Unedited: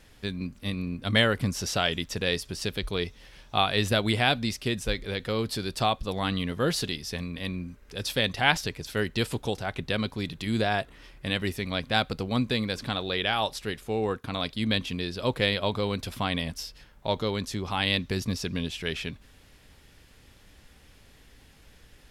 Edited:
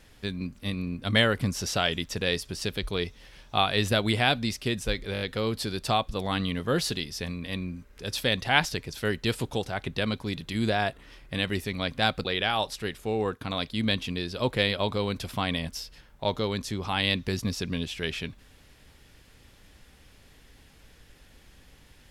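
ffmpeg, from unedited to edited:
-filter_complex "[0:a]asplit=6[s0][s1][s2][s3][s4][s5];[s0]atrim=end=5.152[s6];[s1]atrim=start=5.128:end=5.152[s7];[s2]atrim=start=5.128:end=5.152[s8];[s3]atrim=start=5.128:end=5.152[s9];[s4]atrim=start=5.128:end=12.172[s10];[s5]atrim=start=13.078[s11];[s6][s7]acrossfade=d=0.004:c1=hsin:c2=hsin[s12];[s12][s8]acrossfade=d=0.004:c1=hsin:c2=hsin[s13];[s13][s9]acrossfade=d=0.004:c1=hsin:c2=hsin[s14];[s14][s10]acrossfade=d=0.004:c1=hsin:c2=hsin[s15];[s15][s11]acrossfade=d=0.004:c1=hsin:c2=hsin"

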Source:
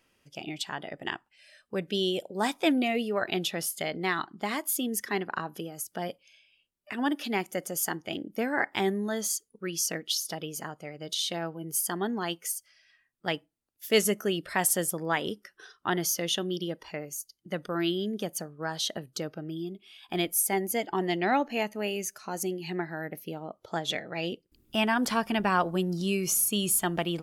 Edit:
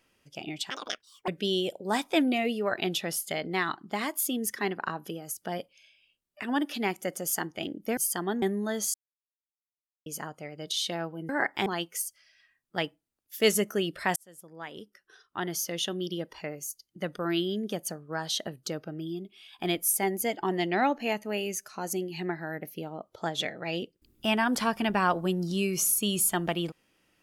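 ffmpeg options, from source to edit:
-filter_complex "[0:a]asplit=10[s0][s1][s2][s3][s4][s5][s6][s7][s8][s9];[s0]atrim=end=0.704[s10];[s1]atrim=start=0.7:end=1.78,asetpts=PTS-STARTPTS,asetrate=82026,aresample=44100,atrim=end_sample=25606,asetpts=PTS-STARTPTS[s11];[s2]atrim=start=1.776:end=8.472[s12];[s3]atrim=start=11.708:end=12.162[s13];[s4]atrim=start=8.838:end=9.36,asetpts=PTS-STARTPTS,afade=t=out:st=0.518:d=0.004:c=hsin[s14];[s5]atrim=start=9.36:end=10.48,asetpts=PTS-STARTPTS,volume=0[s15];[s6]atrim=start=10.48:end=11.712,asetpts=PTS-STARTPTS,afade=t=in:d=0.004:c=hsin[s16];[s7]atrim=start=8.468:end=8.842[s17];[s8]atrim=start=12.158:end=14.66,asetpts=PTS-STARTPTS,afade=t=out:st=2.498:d=0.004:c=hsin[s18];[s9]atrim=start=14.66,asetpts=PTS-STARTPTS,afade=t=in:d=2.15[s19];[s10][s11]acrossfade=d=0.004:c1=hsin:c2=hsin[s20];[s20][s12]acrossfade=d=0.004:c1=hsin:c2=hsin[s21];[s21][s13]acrossfade=d=0.004:c1=hsin:c2=hsin[s22];[s14][s15][s16]concat=n=3:v=0:a=1[s23];[s22][s23]acrossfade=d=0.004:c1=hsin:c2=hsin[s24];[s24][s17]acrossfade=d=0.004:c1=hsin:c2=hsin[s25];[s18][s19]concat=n=2:v=0:a=1[s26];[s25][s26]acrossfade=d=0.004:c1=hsin:c2=hsin"

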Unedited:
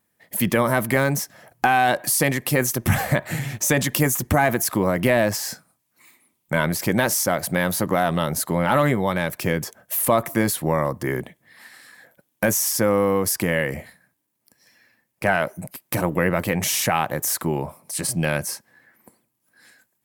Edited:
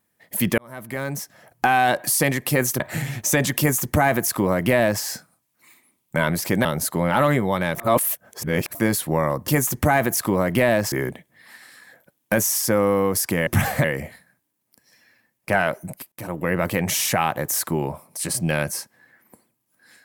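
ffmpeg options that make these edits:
-filter_complex "[0:a]asplit=11[s0][s1][s2][s3][s4][s5][s6][s7][s8][s9][s10];[s0]atrim=end=0.58,asetpts=PTS-STARTPTS,afade=t=out:st=0.576:d=0.004:c=hsin[s11];[s1]atrim=start=0.58:end=2.802,asetpts=PTS-STARTPTS,afade=t=in:d=1.13[s12];[s2]atrim=start=3.168:end=7.022[s13];[s3]atrim=start=8.198:end=9.312[s14];[s4]atrim=start=9.308:end=10.302,asetpts=PTS-STARTPTS,areverse[s15];[s5]atrim=start=10.298:end=11.032[s16];[s6]atrim=start=3.958:end=5.402[s17];[s7]atrim=start=11.028:end=13.582[s18];[s8]atrim=start=2.798:end=3.172[s19];[s9]atrim=start=13.578:end=15.86,asetpts=PTS-STARTPTS,afade=t=out:st=2.278:d=0.004:c=hsin:silence=0.11885[s20];[s10]atrim=start=15.86,asetpts=PTS-STARTPTS,afade=t=in:d=0.52:silence=0.11885[s21];[s11][s12]concat=n=2:v=0:a=1[s22];[s22][s13]acrossfade=d=0.004:c1=hsin:c2=hsin[s23];[s23][s14]acrossfade=d=0.004:c1=hsin:c2=hsin[s24];[s24][s15]acrossfade=d=0.004:c1=hsin:c2=hsin[s25];[s25][s16]acrossfade=d=0.004:c1=hsin:c2=hsin[s26];[s26][s17]acrossfade=d=0.004:c1=hsin:c2=hsin[s27];[s27][s18]acrossfade=d=0.004:c1=hsin:c2=hsin[s28];[s28][s19]acrossfade=d=0.004:c1=hsin:c2=hsin[s29];[s20][s21]concat=n=2:v=0:a=1[s30];[s29][s30]acrossfade=d=0.004:c1=hsin:c2=hsin"

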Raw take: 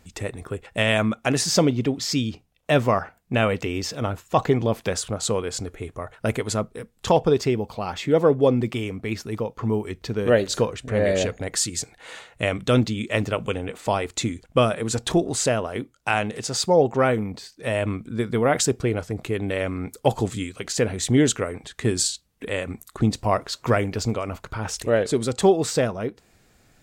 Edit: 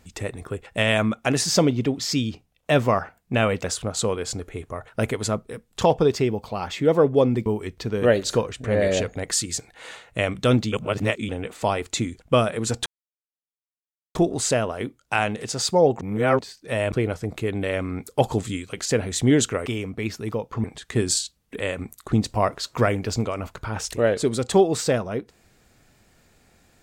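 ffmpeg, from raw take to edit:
-filter_complex "[0:a]asplit=11[s0][s1][s2][s3][s4][s5][s6][s7][s8][s9][s10];[s0]atrim=end=3.642[s11];[s1]atrim=start=4.898:end=8.722[s12];[s2]atrim=start=9.698:end=12.962[s13];[s3]atrim=start=12.958:end=13.532,asetpts=PTS-STARTPTS,areverse[s14];[s4]atrim=start=13.528:end=15.1,asetpts=PTS-STARTPTS,afade=t=out:st=1.568:d=0.004:c=hsin,apad=pad_dur=1.29[s15];[s5]atrim=start=15.1:end=16.962,asetpts=PTS-STARTPTS,afade=t=in:d=0.004:c=hsin[s16];[s6]atrim=start=16.958:end=17.342,asetpts=PTS-STARTPTS,areverse[s17];[s7]atrim=start=17.338:end=17.872[s18];[s8]atrim=start=18.788:end=21.532[s19];[s9]atrim=start=8.718:end=9.702[s20];[s10]atrim=start=21.528[s21];[s11][s12]acrossfade=d=0.004:c1=hsin:c2=hsin[s22];[s22][s13]acrossfade=d=0.004:c1=hsin:c2=hsin[s23];[s23][s14]acrossfade=d=0.004:c1=hsin:c2=hsin[s24];[s15][s16]concat=n=2:v=0:a=1[s25];[s24][s25]acrossfade=d=0.004:c1=hsin:c2=hsin[s26];[s26][s17]acrossfade=d=0.004:c1=hsin:c2=hsin[s27];[s27][s18]acrossfade=d=0.004:c1=hsin:c2=hsin[s28];[s28][s19]acrossfade=d=0.004:c1=hsin:c2=hsin[s29];[s29][s20]acrossfade=d=0.004:c1=hsin:c2=hsin[s30];[s30][s21]acrossfade=d=0.004:c1=hsin:c2=hsin"

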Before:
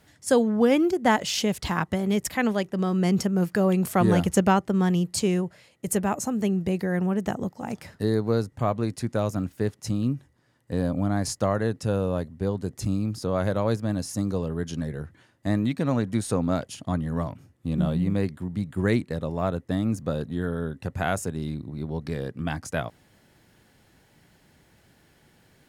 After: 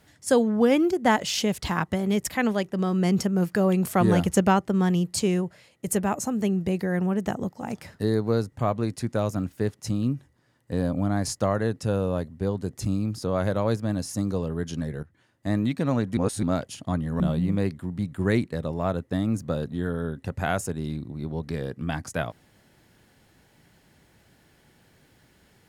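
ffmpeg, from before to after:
-filter_complex "[0:a]asplit=5[s0][s1][s2][s3][s4];[s0]atrim=end=15.03,asetpts=PTS-STARTPTS,afade=t=out:st=15.026:d=0.004:c=hsin:silence=0.188365[s5];[s1]atrim=start=15.03:end=16.172,asetpts=PTS-STARTPTS,afade=t=in:d=0.56:silence=0.188365[s6];[s2]atrim=start=16.168:end=16.432,asetpts=PTS-STARTPTS,areverse[s7];[s3]atrim=start=16.428:end=17.202[s8];[s4]atrim=start=17.778[s9];[s5][s6]concat=n=2:v=0:a=1[s10];[s10][s7]acrossfade=d=0.004:c1=hsin:c2=hsin[s11];[s11][s8]acrossfade=d=0.004:c1=hsin:c2=hsin[s12];[s12][s9]acrossfade=d=0.004:c1=hsin:c2=hsin"

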